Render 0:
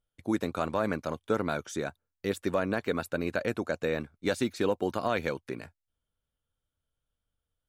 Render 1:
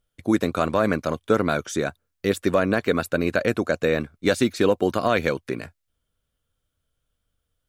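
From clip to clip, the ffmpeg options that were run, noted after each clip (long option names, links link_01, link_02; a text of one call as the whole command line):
ffmpeg -i in.wav -af "equalizer=frequency=870:width=5.9:gain=-6,volume=8.5dB" out.wav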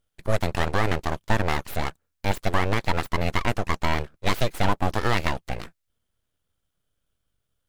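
ffmpeg -i in.wav -af "aeval=exprs='abs(val(0))':channel_layout=same" out.wav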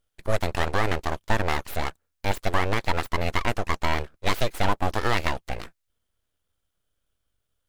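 ffmpeg -i in.wav -af "equalizer=frequency=160:width=1.1:gain=-5" out.wav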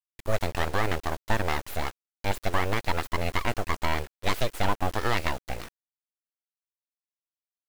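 ffmpeg -i in.wav -af "acrusher=bits=6:mix=0:aa=0.000001,volume=-2.5dB" out.wav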